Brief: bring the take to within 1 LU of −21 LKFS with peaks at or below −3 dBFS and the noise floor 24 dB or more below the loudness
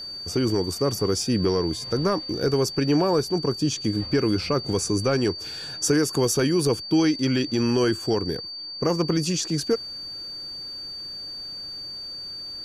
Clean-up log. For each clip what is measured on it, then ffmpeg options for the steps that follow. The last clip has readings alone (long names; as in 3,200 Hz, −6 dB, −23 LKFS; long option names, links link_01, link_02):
interfering tone 4,600 Hz; level of the tone −33 dBFS; integrated loudness −24.5 LKFS; sample peak −8.0 dBFS; target loudness −21.0 LKFS
→ -af "bandreject=frequency=4600:width=30"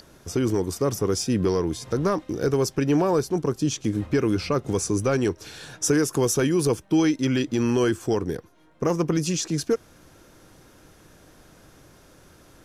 interfering tone none found; integrated loudness −24.0 LKFS; sample peak −8.0 dBFS; target loudness −21.0 LKFS
→ -af "volume=3dB"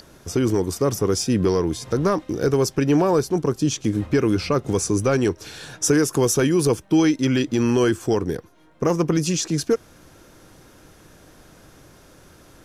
integrated loudness −21.0 LKFS; sample peak −5.0 dBFS; background noise floor −51 dBFS